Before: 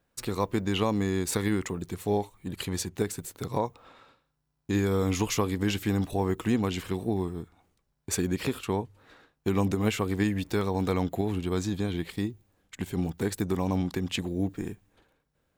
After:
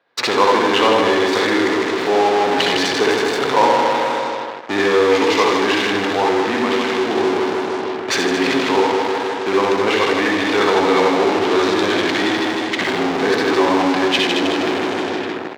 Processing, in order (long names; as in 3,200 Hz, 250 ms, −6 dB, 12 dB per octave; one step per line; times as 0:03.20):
graphic EQ with 10 bands 125 Hz +8 dB, 250 Hz +9 dB, 500 Hz +6 dB, 1,000 Hz +9 dB, 2,000 Hz +8 dB, 4,000 Hz +10 dB, 8,000 Hz −9 dB
repeating echo 156 ms, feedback 55%, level −5 dB
convolution reverb RT60 0.20 s, pre-delay 59 ms, DRR 0 dB
in parallel at −4 dB: fuzz pedal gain 38 dB, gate −44 dBFS
on the sum: high-pass filter 95 Hz 24 dB per octave
automatic gain control
three-way crossover with the lows and the highs turned down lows −22 dB, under 370 Hz, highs −17 dB, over 6,700 Hz
level +1.5 dB